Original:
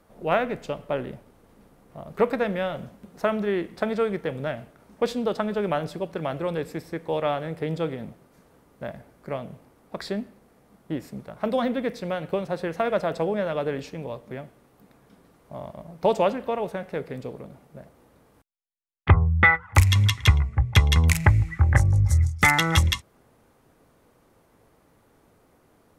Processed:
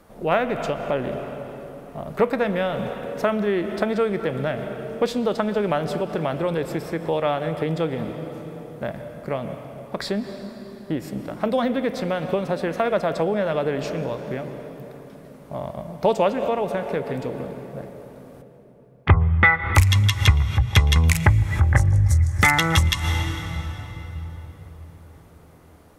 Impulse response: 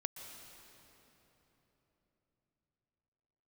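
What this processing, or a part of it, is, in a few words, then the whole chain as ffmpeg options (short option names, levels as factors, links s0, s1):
ducked reverb: -filter_complex "[0:a]asplit=3[s0][s1][s2];[1:a]atrim=start_sample=2205[s3];[s1][s3]afir=irnorm=-1:irlink=0[s4];[s2]apad=whole_len=1145928[s5];[s4][s5]sidechaincompress=threshold=0.0251:ratio=8:attack=16:release=138,volume=1.58[s6];[s0][s6]amix=inputs=2:normalize=0"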